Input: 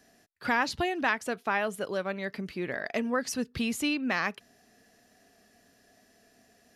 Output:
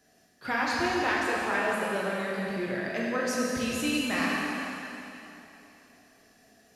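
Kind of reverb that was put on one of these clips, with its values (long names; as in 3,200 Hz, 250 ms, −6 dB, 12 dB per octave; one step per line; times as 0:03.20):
dense smooth reverb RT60 3.1 s, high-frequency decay 1×, DRR −5.5 dB
level −4.5 dB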